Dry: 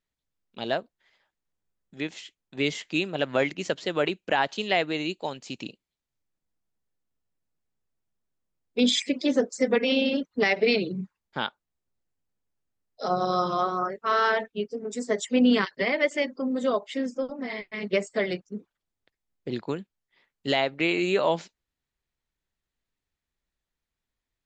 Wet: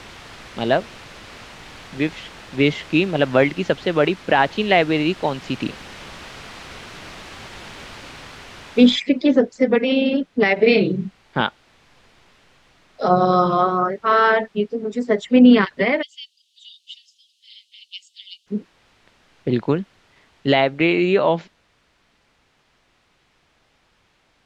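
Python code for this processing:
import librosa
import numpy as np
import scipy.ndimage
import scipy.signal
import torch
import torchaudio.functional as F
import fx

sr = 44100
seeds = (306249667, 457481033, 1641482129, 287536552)

y = fx.noise_floor_step(x, sr, seeds[0], at_s=8.96, before_db=-42, after_db=-59, tilt_db=0.0)
y = fx.doubler(y, sr, ms=35.0, db=-5, at=(10.55, 11.41))
y = fx.cheby1_highpass(y, sr, hz=2900.0, order=6, at=(16.01, 18.46), fade=0.02)
y = scipy.signal.sosfilt(scipy.signal.butter(2, 3100.0, 'lowpass', fs=sr, output='sos'), y)
y = fx.low_shelf(y, sr, hz=220.0, db=6.5)
y = fx.rider(y, sr, range_db=5, speed_s=2.0)
y = y * 10.0 ** (6.5 / 20.0)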